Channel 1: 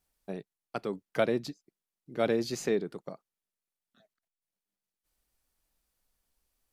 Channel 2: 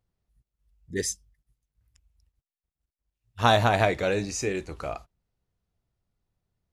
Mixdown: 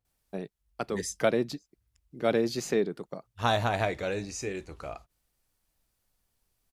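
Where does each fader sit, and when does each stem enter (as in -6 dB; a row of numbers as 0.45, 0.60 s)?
+2.0, -6.0 dB; 0.05, 0.00 s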